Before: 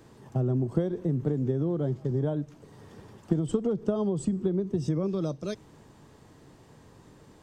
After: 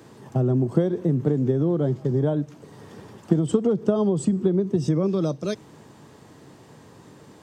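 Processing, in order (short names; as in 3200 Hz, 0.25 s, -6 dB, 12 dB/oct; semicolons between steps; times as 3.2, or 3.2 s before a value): HPF 110 Hz; gain +6.5 dB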